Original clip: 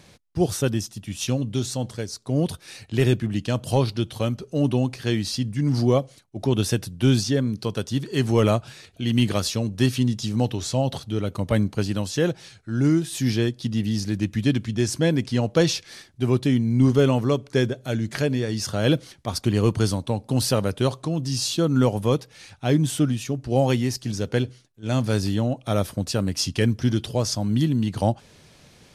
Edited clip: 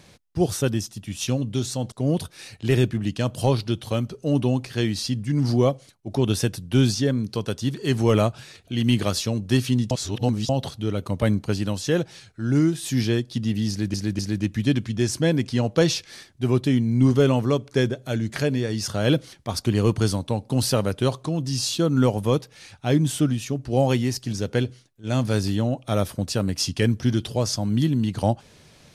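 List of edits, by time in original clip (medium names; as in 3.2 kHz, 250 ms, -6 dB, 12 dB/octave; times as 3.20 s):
1.92–2.21 s: delete
10.20–10.78 s: reverse
13.98–14.23 s: loop, 3 plays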